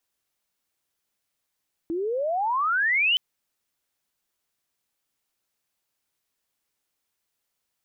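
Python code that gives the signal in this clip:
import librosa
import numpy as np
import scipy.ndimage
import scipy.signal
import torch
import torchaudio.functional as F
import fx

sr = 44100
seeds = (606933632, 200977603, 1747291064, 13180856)

y = fx.chirp(sr, length_s=1.27, from_hz=320.0, to_hz=3100.0, law='logarithmic', from_db=-25.0, to_db=-18.0)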